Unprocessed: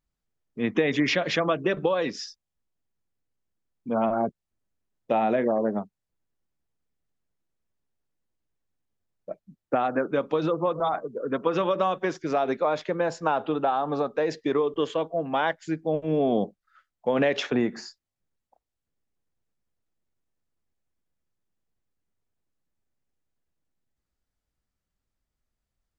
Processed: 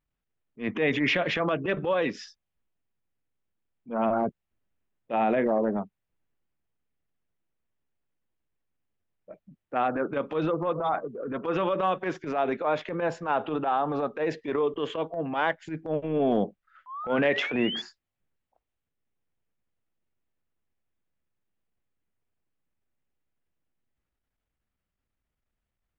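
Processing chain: resonant high shelf 3700 Hz -8 dB, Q 1.5; painted sound rise, 16.86–17.82, 990–3500 Hz -35 dBFS; transient shaper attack -12 dB, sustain +2 dB

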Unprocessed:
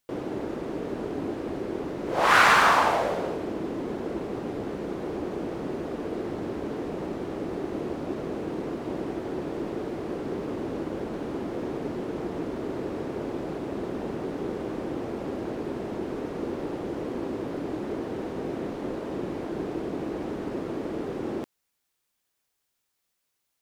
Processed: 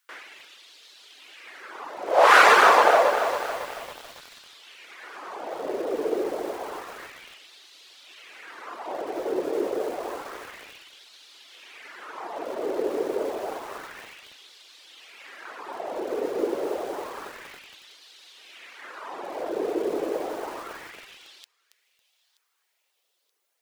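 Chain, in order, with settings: reverb removal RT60 0.86 s; LFO high-pass sine 0.29 Hz 430–3900 Hz; on a send: thin delay 0.927 s, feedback 42%, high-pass 3600 Hz, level -18 dB; on the sum: lo-fi delay 0.276 s, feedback 55%, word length 7-bit, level -8 dB; gain +3.5 dB

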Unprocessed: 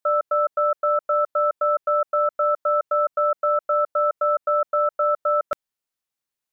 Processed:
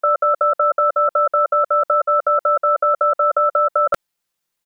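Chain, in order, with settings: comb 5.8 ms, depth 68%; tempo 1.4×; gain +8.5 dB

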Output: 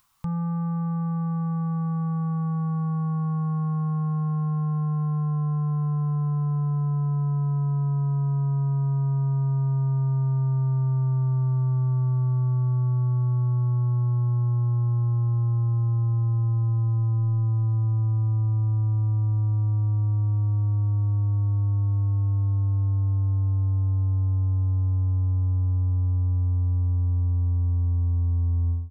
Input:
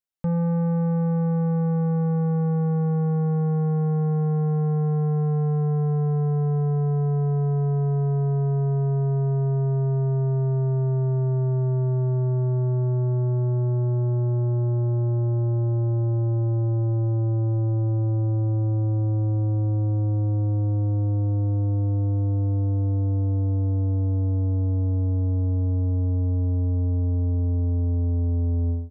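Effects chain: EQ curve 130 Hz 0 dB, 260 Hz -11 dB, 580 Hz -19 dB, 1100 Hz +8 dB, 1600 Hz -8 dB; upward compressor, threshold -42 dBFS

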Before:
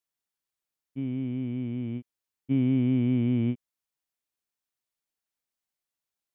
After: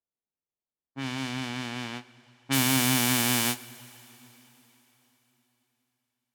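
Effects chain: spectral whitening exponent 0.1; low-pass opened by the level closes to 700 Hz, open at -22 dBFS; two-slope reverb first 0.21 s, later 3.9 s, from -19 dB, DRR 11 dB

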